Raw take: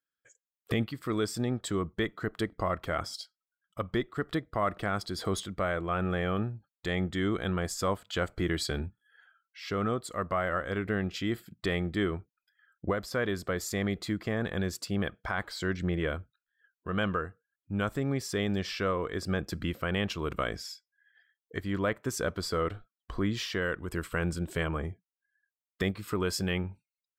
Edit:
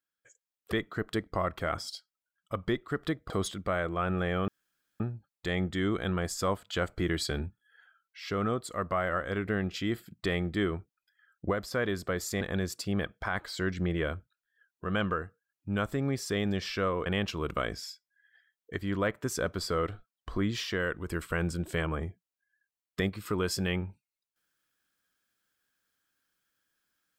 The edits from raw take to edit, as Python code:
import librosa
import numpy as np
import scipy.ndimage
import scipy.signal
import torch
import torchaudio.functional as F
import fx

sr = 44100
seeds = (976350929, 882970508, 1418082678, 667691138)

y = fx.edit(x, sr, fx.cut(start_s=0.72, length_s=1.26),
    fx.cut(start_s=4.56, length_s=0.66),
    fx.insert_room_tone(at_s=6.4, length_s=0.52),
    fx.cut(start_s=13.81, length_s=0.63),
    fx.cut(start_s=19.09, length_s=0.79), tone=tone)